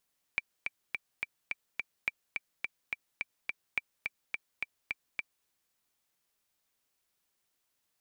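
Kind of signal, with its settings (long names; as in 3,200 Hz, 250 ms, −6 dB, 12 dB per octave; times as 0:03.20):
click track 212 BPM, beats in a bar 6, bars 3, 2,340 Hz, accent 4 dB −16 dBFS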